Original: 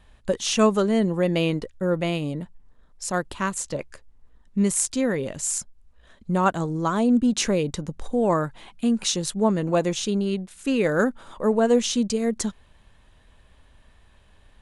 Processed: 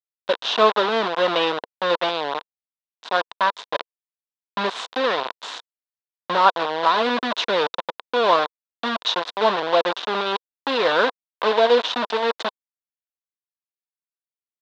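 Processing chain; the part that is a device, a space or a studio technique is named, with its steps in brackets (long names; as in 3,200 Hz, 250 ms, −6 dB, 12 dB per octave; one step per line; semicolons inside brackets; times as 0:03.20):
hand-held game console (bit reduction 4 bits; loudspeaker in its box 470–4,000 Hz, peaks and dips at 480 Hz +4 dB, 690 Hz +3 dB, 1,000 Hz +9 dB, 1,500 Hz +3 dB, 2,200 Hz −4 dB, 3,700 Hz +8 dB)
level +1.5 dB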